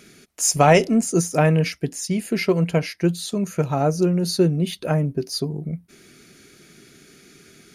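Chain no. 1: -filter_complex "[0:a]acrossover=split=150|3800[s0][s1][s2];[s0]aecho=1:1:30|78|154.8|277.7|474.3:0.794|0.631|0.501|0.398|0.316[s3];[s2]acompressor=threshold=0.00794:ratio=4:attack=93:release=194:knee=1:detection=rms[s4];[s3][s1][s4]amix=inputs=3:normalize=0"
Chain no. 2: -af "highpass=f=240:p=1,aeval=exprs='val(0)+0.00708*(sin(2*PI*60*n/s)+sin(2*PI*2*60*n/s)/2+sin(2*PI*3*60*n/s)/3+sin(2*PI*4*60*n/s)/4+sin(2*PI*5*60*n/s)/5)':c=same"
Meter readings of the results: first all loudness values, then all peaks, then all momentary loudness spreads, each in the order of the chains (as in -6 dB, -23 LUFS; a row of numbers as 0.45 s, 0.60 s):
-21.0 LUFS, -22.5 LUFS; -3.0 dBFS, -3.0 dBFS; 12 LU, 11 LU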